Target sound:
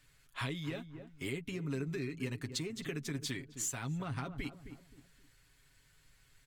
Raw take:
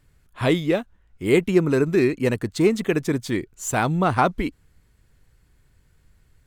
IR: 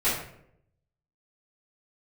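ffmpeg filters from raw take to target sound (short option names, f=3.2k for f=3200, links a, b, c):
-filter_complex "[0:a]highshelf=f=5.7k:g=-10,acrossover=split=270[a][b];[b]acompressor=threshold=-33dB:ratio=6[c];[a][c]amix=inputs=2:normalize=0,tiltshelf=f=1.4k:g=-10,asplit=2[d][e];[e]adelay=263,lowpass=f=910:p=1,volume=-12.5dB,asplit=2[f][g];[g]adelay=263,lowpass=f=910:p=1,volume=0.34,asplit=2[h][i];[i]adelay=263,lowpass=f=910:p=1,volume=0.34[j];[f][h][j]amix=inputs=3:normalize=0[k];[d][k]amix=inputs=2:normalize=0,acompressor=threshold=-35dB:ratio=5,aecho=1:1:7.3:0.58,volume=-1.5dB"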